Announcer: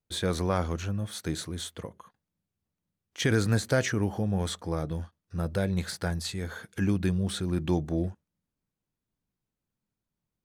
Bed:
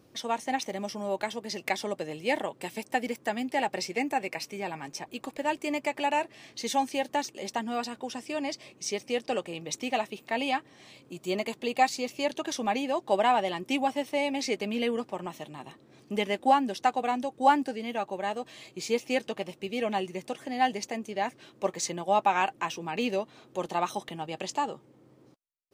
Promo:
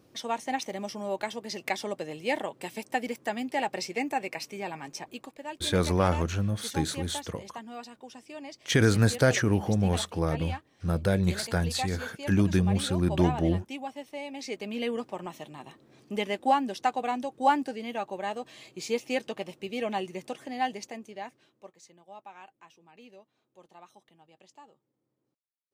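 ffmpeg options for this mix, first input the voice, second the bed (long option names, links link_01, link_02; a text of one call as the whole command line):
ffmpeg -i stem1.wav -i stem2.wav -filter_complex "[0:a]adelay=5500,volume=3dB[link_01];[1:a]volume=7.5dB,afade=type=out:start_time=5.09:duration=0.24:silence=0.354813,afade=type=in:start_time=14.28:duration=0.68:silence=0.375837,afade=type=out:start_time=20.28:duration=1.44:silence=0.0841395[link_02];[link_01][link_02]amix=inputs=2:normalize=0" out.wav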